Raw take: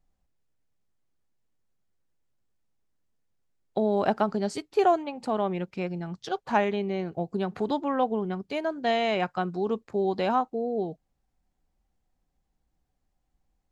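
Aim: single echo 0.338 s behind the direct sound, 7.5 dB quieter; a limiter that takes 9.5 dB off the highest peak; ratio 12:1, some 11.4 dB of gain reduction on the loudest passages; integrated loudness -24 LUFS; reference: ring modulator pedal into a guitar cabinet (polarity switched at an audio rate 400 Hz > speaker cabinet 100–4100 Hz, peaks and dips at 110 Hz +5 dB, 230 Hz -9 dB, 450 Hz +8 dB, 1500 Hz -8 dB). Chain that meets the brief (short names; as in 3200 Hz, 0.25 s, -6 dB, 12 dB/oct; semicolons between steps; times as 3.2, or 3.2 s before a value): compressor 12:1, threshold -29 dBFS; limiter -27 dBFS; echo 0.338 s -7.5 dB; polarity switched at an audio rate 400 Hz; speaker cabinet 100–4100 Hz, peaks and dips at 110 Hz +5 dB, 230 Hz -9 dB, 450 Hz +8 dB, 1500 Hz -8 dB; gain +13 dB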